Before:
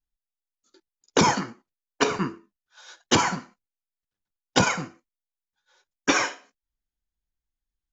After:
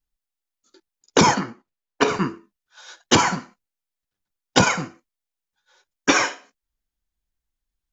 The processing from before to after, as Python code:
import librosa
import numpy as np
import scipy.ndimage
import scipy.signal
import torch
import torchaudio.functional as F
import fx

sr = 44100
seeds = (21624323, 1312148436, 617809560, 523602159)

y = fx.high_shelf(x, sr, hz=5400.0, db=-10.0, at=(1.34, 2.08))
y = F.gain(torch.from_numpy(y), 4.0).numpy()